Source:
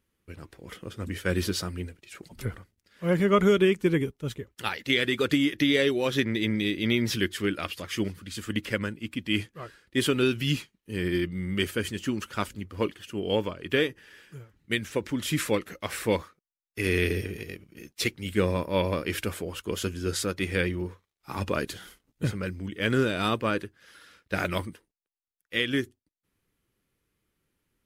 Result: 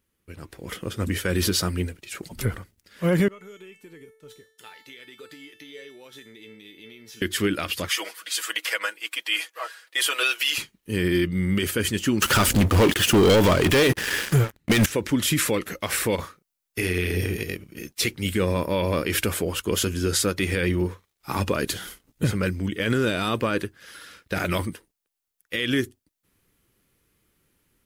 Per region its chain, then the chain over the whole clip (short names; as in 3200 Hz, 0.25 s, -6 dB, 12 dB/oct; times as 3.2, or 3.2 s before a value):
3.28–7.22 HPF 280 Hz 6 dB/oct + compressor 3:1, threshold -35 dBFS + resonator 440 Hz, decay 0.54 s, mix 90%
7.89–10.58 HPF 630 Hz 24 dB/oct + comb 6.2 ms, depth 82%
12.22–14.86 compressor, threshold -30 dBFS + sample leveller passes 5
16.15–17.36 compressor, threshold -29 dBFS + doubler 33 ms -6.5 dB
whole clip: high shelf 7400 Hz +6 dB; limiter -20.5 dBFS; AGC gain up to 8 dB